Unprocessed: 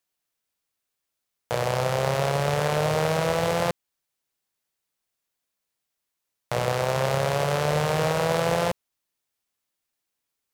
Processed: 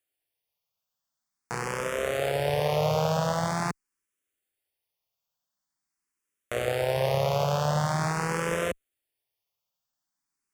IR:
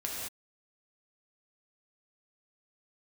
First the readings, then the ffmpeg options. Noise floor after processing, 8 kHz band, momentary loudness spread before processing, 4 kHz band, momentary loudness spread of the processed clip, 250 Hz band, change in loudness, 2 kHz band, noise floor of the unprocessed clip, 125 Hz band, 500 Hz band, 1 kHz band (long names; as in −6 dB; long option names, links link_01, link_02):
below −85 dBFS, −3.0 dB, 5 LU, −4.0 dB, 8 LU, −2.0 dB, −3.0 dB, −3.0 dB, −83 dBFS, −2.5 dB, −3.0 dB, −3.0 dB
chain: -filter_complex "[0:a]bandreject=frequency=4000:width=11,asplit=2[link_01][link_02];[link_02]afreqshift=0.45[link_03];[link_01][link_03]amix=inputs=2:normalize=1"